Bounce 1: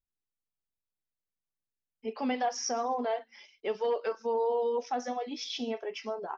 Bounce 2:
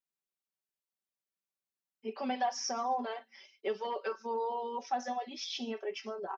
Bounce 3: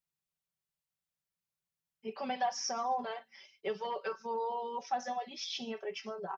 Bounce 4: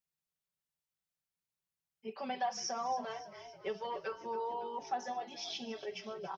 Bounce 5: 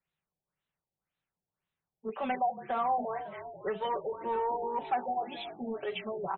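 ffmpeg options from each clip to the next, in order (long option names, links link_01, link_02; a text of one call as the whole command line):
ffmpeg -i in.wav -af "highpass=210,aecho=1:1:5.2:0.74,volume=-3.5dB" out.wav
ffmpeg -i in.wav -af "lowshelf=frequency=200:width_type=q:width=3:gain=7.5" out.wav
ffmpeg -i in.wav -filter_complex "[0:a]asplit=7[link_01][link_02][link_03][link_04][link_05][link_06][link_07];[link_02]adelay=279,afreqshift=-38,volume=-14.5dB[link_08];[link_03]adelay=558,afreqshift=-76,volume=-19.1dB[link_09];[link_04]adelay=837,afreqshift=-114,volume=-23.7dB[link_10];[link_05]adelay=1116,afreqshift=-152,volume=-28.2dB[link_11];[link_06]adelay=1395,afreqshift=-190,volume=-32.8dB[link_12];[link_07]adelay=1674,afreqshift=-228,volume=-37.4dB[link_13];[link_01][link_08][link_09][link_10][link_11][link_12][link_13]amix=inputs=7:normalize=0,volume=-2.5dB" out.wav
ffmpeg -i in.wav -filter_complex "[0:a]acrossover=split=110|890|2300[link_01][link_02][link_03][link_04];[link_02]asoftclip=type=tanh:threshold=-37.5dB[link_05];[link_01][link_05][link_03][link_04]amix=inputs=4:normalize=0,afftfilt=real='re*lt(b*sr/1024,880*pow(4200/880,0.5+0.5*sin(2*PI*1.9*pts/sr)))':imag='im*lt(b*sr/1024,880*pow(4200/880,0.5+0.5*sin(2*PI*1.9*pts/sr)))':win_size=1024:overlap=0.75,volume=8.5dB" out.wav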